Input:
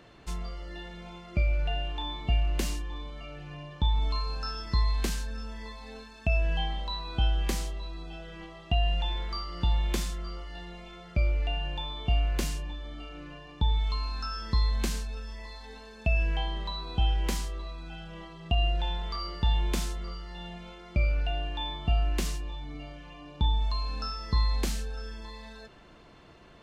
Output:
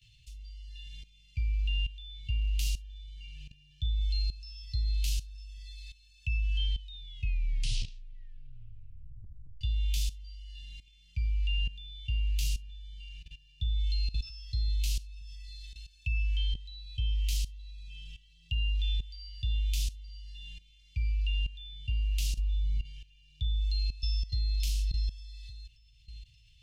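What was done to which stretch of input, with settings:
0:06.72: tape stop 2.89 s
0:12.71–0:13.76: delay throw 530 ms, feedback 50%, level −12 dB
0:22.38–0:22.84: low-shelf EQ 140 Hz +12 dB
0:23.44–0:24.50: delay throw 580 ms, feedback 40%, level −8 dB
whole clip: Chebyshev band-stop filter 120–2,700 Hz, order 4; dynamic equaliser 8,000 Hz, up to −5 dB, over −57 dBFS, Q 1.9; output level in coarse steps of 16 dB; level +4 dB

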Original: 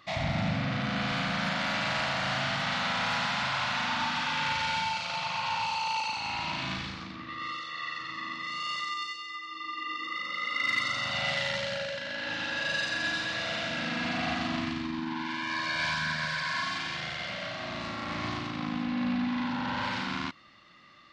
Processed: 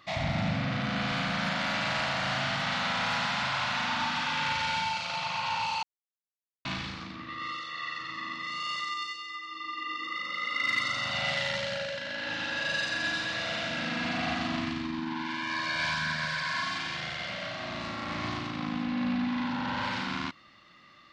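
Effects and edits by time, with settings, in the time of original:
0:05.83–0:06.65: silence

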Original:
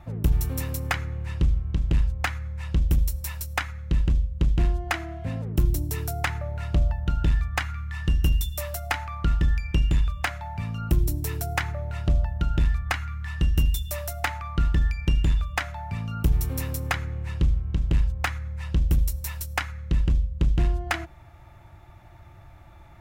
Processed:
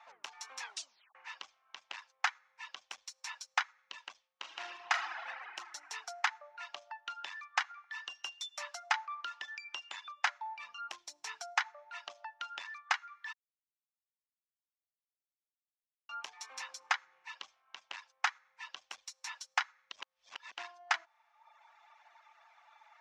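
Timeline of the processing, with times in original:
0:00.60: tape stop 0.55 s
0:04.31–0:05.12: thrown reverb, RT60 2.9 s, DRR −1.5 dB
0:07.11–0:10.01: feedback echo with a low-pass in the loop 66 ms, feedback 75%, low-pass 1,800 Hz, level −18 dB
0:13.33–0:16.09: silence
0:19.92–0:20.52: reverse
whole clip: elliptic band-pass filter 860–6,100 Hz, stop band 80 dB; reverb reduction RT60 0.96 s; dynamic equaliser 2,400 Hz, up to −5 dB, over −44 dBFS, Q 1.7; level −1 dB

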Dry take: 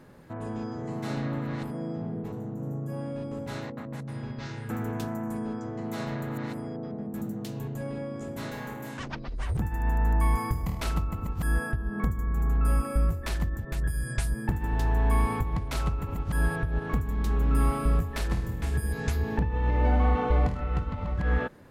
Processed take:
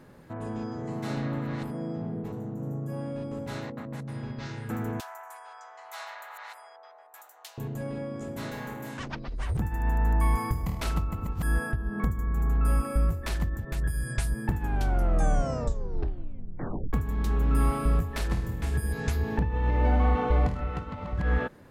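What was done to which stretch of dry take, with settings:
0:05.00–0:07.58: Butterworth high-pass 740 Hz
0:14.54: tape stop 2.39 s
0:20.70–0:21.13: high-pass filter 160 Hz 6 dB per octave

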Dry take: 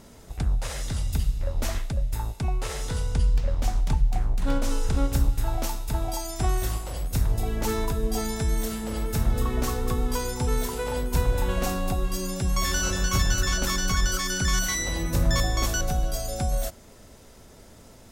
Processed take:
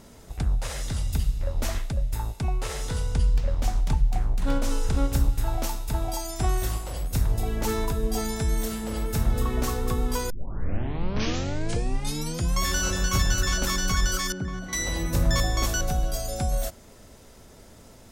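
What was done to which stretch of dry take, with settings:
0:10.30: tape start 2.32 s
0:14.32–0:14.73: resonant band-pass 260 Hz, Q 0.61

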